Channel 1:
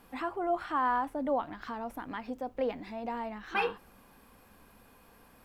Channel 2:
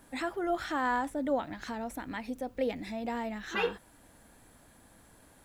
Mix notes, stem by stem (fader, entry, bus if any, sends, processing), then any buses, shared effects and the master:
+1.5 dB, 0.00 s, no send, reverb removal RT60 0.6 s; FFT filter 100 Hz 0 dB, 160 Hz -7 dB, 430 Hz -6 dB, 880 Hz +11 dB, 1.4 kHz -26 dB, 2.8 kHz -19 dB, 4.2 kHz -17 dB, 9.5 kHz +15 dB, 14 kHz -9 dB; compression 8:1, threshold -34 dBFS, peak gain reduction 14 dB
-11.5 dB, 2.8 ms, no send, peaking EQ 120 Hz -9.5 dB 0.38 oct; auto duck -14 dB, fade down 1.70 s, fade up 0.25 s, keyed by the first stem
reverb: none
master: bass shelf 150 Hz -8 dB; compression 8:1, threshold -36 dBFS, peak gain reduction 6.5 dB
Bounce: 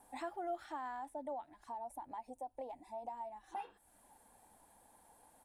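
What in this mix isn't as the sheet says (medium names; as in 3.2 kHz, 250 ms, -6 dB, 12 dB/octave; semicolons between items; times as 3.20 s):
stem 1 +1.5 dB -> -6.5 dB; master: missing compression 8:1, threshold -36 dBFS, peak gain reduction 6.5 dB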